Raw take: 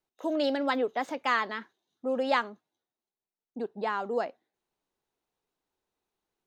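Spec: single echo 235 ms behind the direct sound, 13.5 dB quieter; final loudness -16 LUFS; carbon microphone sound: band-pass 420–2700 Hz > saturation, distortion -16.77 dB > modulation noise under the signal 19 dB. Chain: band-pass 420–2700 Hz; delay 235 ms -13.5 dB; saturation -20.5 dBFS; modulation noise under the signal 19 dB; trim +17.5 dB

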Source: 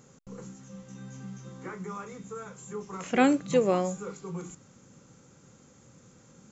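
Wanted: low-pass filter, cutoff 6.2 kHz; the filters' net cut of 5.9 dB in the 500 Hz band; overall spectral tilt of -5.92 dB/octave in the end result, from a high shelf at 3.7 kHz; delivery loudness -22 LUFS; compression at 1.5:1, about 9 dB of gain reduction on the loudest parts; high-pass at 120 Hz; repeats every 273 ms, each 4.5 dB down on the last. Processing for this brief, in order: high-pass 120 Hz; low-pass 6.2 kHz; peaking EQ 500 Hz -6.5 dB; treble shelf 3.7 kHz -4 dB; compression 1.5:1, threshold -45 dBFS; feedback delay 273 ms, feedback 60%, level -4.5 dB; trim +18 dB

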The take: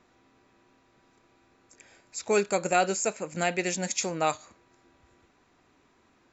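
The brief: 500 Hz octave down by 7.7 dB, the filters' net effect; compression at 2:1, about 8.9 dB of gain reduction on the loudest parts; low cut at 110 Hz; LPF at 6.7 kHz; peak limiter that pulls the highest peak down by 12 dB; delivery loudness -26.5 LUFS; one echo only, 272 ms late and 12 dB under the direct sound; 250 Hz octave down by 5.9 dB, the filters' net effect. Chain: high-pass 110 Hz; low-pass 6.7 kHz; peaking EQ 250 Hz -6 dB; peaking EQ 500 Hz -8.5 dB; compression 2:1, threshold -39 dBFS; peak limiter -32 dBFS; delay 272 ms -12 dB; trim +17 dB

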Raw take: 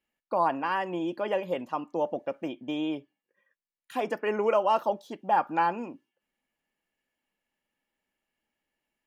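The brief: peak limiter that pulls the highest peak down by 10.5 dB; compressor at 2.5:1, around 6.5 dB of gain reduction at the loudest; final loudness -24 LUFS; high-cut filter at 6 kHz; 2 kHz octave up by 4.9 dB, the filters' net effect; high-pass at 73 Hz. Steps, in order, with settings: high-pass 73 Hz; low-pass 6 kHz; peaking EQ 2 kHz +6.5 dB; compression 2.5:1, threshold -28 dBFS; trim +12.5 dB; peak limiter -13 dBFS

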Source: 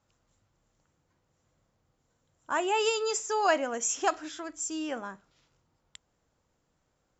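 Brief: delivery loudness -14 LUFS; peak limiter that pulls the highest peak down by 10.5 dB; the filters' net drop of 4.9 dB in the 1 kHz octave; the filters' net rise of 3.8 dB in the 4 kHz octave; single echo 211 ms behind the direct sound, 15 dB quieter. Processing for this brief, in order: peaking EQ 1 kHz -7 dB; peaking EQ 4 kHz +6 dB; peak limiter -25 dBFS; delay 211 ms -15 dB; trim +20 dB

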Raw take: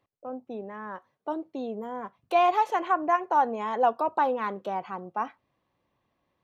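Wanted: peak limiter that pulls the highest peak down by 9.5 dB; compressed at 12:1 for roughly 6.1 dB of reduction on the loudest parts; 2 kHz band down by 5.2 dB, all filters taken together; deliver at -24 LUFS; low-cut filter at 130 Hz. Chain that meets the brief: high-pass 130 Hz; peaking EQ 2 kHz -7.5 dB; compression 12:1, threshold -24 dBFS; trim +11.5 dB; peak limiter -13.5 dBFS

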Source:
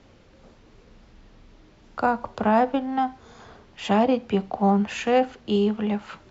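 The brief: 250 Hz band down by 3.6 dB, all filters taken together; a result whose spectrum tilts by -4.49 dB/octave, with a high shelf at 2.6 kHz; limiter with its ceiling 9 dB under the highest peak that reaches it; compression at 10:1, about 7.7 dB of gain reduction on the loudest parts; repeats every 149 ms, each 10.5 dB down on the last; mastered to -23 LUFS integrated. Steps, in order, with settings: peaking EQ 250 Hz -4.5 dB; treble shelf 2.6 kHz +4 dB; compression 10:1, threshold -23 dBFS; peak limiter -23 dBFS; feedback delay 149 ms, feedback 30%, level -10.5 dB; trim +10 dB

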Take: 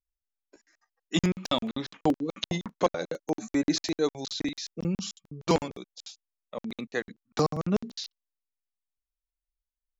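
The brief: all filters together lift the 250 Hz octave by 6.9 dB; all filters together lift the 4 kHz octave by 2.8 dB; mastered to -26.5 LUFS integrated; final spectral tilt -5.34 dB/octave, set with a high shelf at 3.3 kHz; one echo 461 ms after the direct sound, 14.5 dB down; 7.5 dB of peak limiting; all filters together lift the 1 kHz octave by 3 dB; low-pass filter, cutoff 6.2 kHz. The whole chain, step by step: low-pass 6.2 kHz; peaking EQ 250 Hz +9 dB; peaking EQ 1 kHz +3.5 dB; treble shelf 3.3 kHz -8 dB; peaking EQ 4 kHz +9 dB; peak limiter -15 dBFS; delay 461 ms -14.5 dB; trim +2 dB

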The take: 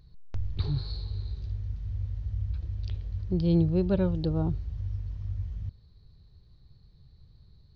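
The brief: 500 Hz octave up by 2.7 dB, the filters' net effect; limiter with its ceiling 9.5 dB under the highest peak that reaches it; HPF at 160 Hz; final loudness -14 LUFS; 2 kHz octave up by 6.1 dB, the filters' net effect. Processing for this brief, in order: high-pass 160 Hz; peaking EQ 500 Hz +3.5 dB; peaking EQ 2 kHz +8.5 dB; trim +23 dB; peak limiter 0 dBFS

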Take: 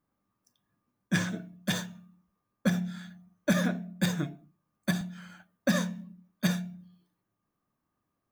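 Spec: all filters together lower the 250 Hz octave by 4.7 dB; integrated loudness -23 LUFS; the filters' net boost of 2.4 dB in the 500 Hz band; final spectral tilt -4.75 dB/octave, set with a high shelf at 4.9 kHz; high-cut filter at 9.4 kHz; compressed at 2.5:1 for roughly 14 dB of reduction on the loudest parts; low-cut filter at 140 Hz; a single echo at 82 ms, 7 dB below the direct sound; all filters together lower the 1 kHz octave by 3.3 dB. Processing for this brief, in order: high-pass 140 Hz; low-pass 9.4 kHz; peaking EQ 250 Hz -6.5 dB; peaking EQ 500 Hz +6 dB; peaking EQ 1 kHz -6 dB; treble shelf 4.9 kHz -8 dB; compression 2.5:1, threshold -45 dBFS; delay 82 ms -7 dB; trim +23.5 dB

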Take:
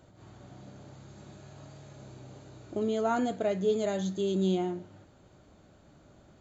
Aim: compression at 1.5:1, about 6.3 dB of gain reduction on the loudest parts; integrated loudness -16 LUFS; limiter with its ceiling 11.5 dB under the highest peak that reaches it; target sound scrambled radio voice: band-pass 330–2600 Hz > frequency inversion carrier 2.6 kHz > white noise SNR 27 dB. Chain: compression 1.5:1, threshold -41 dBFS; peak limiter -34.5 dBFS; band-pass 330–2600 Hz; frequency inversion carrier 2.6 kHz; white noise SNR 27 dB; trim +28.5 dB

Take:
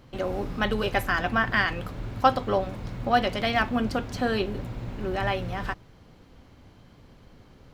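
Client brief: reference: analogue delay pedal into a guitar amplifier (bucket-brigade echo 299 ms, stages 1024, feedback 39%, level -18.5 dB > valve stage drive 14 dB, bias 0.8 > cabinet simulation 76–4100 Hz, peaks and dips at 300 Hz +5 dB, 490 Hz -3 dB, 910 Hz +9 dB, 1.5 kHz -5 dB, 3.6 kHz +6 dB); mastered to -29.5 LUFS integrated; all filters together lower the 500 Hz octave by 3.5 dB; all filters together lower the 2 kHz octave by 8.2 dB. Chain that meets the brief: peaking EQ 500 Hz -4 dB; peaking EQ 2 kHz -7.5 dB; bucket-brigade echo 299 ms, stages 1024, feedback 39%, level -18.5 dB; valve stage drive 14 dB, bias 0.8; cabinet simulation 76–4100 Hz, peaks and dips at 300 Hz +5 dB, 490 Hz -3 dB, 910 Hz +9 dB, 1.5 kHz -5 dB, 3.6 kHz +6 dB; trim +4 dB

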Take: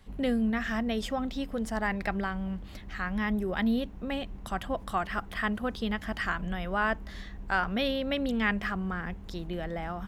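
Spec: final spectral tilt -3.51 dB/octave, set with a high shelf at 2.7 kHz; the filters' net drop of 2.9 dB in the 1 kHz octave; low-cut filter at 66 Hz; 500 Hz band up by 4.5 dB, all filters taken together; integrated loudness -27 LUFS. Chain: high-pass 66 Hz; peaking EQ 500 Hz +7 dB; peaking EQ 1 kHz -8 dB; treble shelf 2.7 kHz +7.5 dB; trim +3 dB

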